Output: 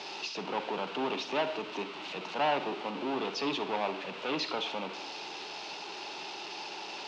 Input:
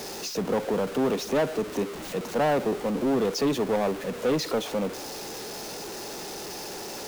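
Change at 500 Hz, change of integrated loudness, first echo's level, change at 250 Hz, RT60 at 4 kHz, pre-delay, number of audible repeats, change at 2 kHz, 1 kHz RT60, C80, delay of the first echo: -9.5 dB, -6.5 dB, none, -10.5 dB, 0.55 s, 35 ms, none, -1.0 dB, 0.70 s, 15.0 dB, none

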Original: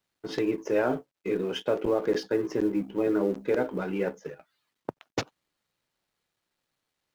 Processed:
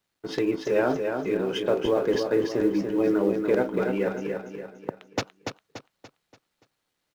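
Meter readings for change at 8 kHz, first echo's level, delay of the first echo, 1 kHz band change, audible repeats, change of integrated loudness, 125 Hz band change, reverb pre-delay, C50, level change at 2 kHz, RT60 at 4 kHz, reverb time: n/a, -5.5 dB, 0.288 s, +3.0 dB, 4, +3.0 dB, +3.0 dB, none, none, +3.5 dB, none, none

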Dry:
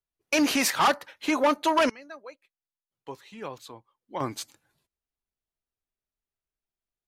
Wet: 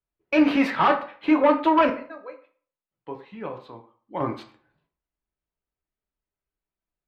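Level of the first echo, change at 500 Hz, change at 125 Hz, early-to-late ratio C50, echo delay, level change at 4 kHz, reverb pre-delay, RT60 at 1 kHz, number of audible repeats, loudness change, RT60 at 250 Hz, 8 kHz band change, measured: none, +4.0 dB, +4.0 dB, 14.0 dB, none, -6.0 dB, 3 ms, 0.45 s, none, +3.5 dB, 0.40 s, under -20 dB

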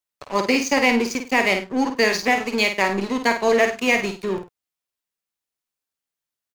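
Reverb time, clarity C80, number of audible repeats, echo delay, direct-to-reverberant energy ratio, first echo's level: none, none, 2, 51 ms, none, -7.0 dB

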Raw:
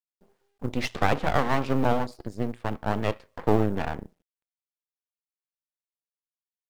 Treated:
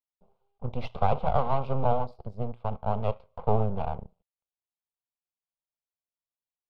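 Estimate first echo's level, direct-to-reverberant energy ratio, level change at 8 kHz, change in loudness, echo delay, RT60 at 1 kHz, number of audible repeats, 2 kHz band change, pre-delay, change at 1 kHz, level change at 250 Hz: none, none, under -25 dB, -2.5 dB, none, none, none, -15.0 dB, none, -0.5 dB, -8.5 dB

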